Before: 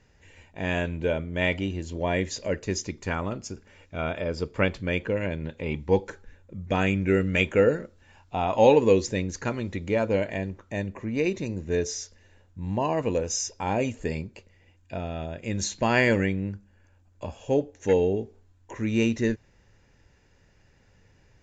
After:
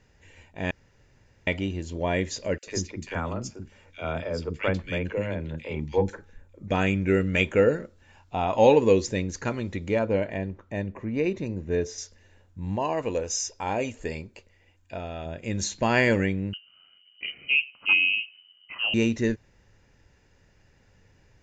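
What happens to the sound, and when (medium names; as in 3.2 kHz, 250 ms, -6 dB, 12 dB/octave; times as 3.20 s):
0.71–1.47 s: room tone
2.58–6.68 s: three bands offset in time highs, mids, lows 50/90 ms, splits 310/2100 Hz
9.99–11.98 s: low-pass 2.4 kHz 6 dB/octave
12.76–15.26 s: peaking EQ 150 Hz -6.5 dB 2.1 oct
16.53–18.94 s: frequency inversion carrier 3 kHz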